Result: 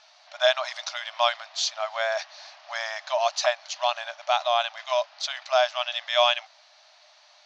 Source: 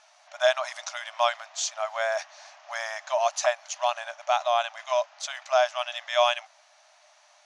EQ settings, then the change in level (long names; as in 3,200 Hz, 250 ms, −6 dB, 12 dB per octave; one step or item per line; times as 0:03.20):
low-pass with resonance 4,400 Hz, resonance Q 2.7
0.0 dB